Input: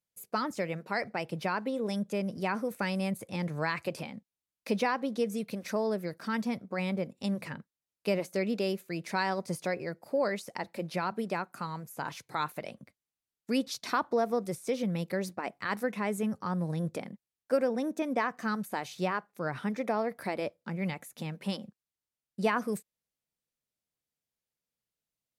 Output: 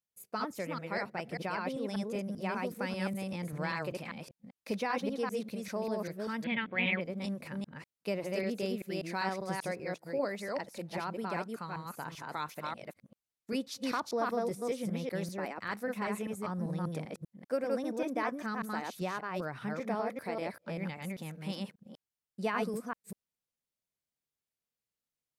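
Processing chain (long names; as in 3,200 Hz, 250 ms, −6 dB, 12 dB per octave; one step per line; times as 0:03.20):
delay that plays each chunk backwards 196 ms, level −1.5 dB
0:06.44–0:07.01: drawn EQ curve 1,300 Hz 0 dB, 2,000 Hz +13 dB, 3,300 Hz +14 dB, 5,900 Hz −30 dB
level −5.5 dB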